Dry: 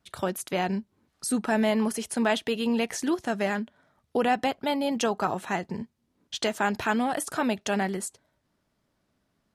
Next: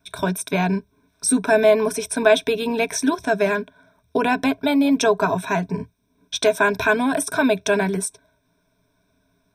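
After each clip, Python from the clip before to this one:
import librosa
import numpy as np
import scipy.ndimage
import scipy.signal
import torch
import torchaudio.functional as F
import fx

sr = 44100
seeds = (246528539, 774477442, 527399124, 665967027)

y = fx.ripple_eq(x, sr, per_octave=1.6, db=17)
y = y * 10.0 ** (4.5 / 20.0)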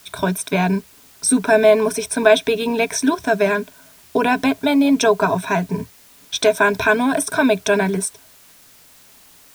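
y = fx.dmg_noise_colour(x, sr, seeds[0], colour='white', level_db=-51.0)
y = y * 10.0 ** (2.5 / 20.0)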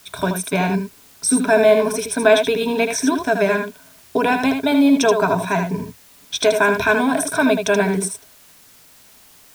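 y = x + 10.0 ** (-6.5 / 20.0) * np.pad(x, (int(79 * sr / 1000.0), 0))[:len(x)]
y = y * 10.0 ** (-1.0 / 20.0)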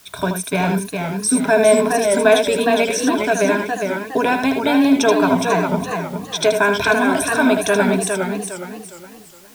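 y = fx.echo_warbled(x, sr, ms=411, feedback_pct=35, rate_hz=2.8, cents=132, wet_db=-5.0)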